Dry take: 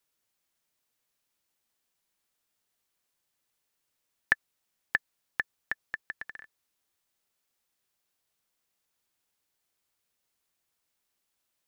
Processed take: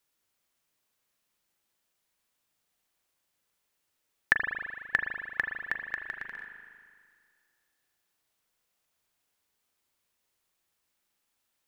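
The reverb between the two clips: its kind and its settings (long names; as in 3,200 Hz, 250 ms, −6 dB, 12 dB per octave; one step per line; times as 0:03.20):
spring reverb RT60 2 s, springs 38 ms, chirp 65 ms, DRR 3 dB
level +1 dB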